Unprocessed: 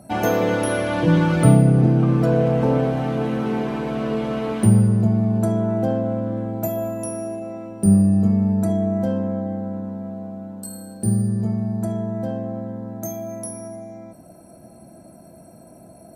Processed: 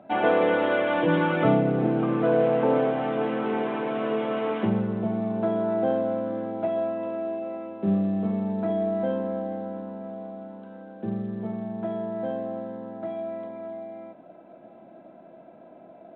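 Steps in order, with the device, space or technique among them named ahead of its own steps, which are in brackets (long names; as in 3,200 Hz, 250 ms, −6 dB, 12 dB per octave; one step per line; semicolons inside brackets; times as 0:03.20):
telephone (band-pass filter 320–3,400 Hz; mu-law 64 kbit/s 8,000 Hz)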